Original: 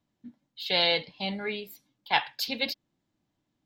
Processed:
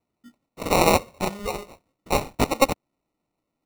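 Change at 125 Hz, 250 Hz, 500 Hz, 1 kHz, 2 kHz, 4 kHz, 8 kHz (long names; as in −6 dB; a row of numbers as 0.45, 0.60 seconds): +13.0, +10.5, +9.5, +8.5, +1.0, −5.0, +17.5 decibels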